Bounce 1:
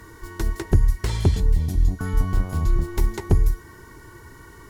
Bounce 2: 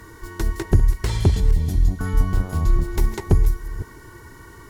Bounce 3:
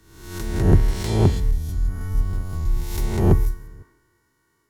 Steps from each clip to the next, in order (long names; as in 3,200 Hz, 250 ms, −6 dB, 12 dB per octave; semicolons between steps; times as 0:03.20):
delay that plays each chunk backwards 255 ms, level −14 dB; level +1.5 dB
peak hold with a rise ahead of every peak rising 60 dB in 1.65 s; multiband upward and downward expander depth 100%; level −6 dB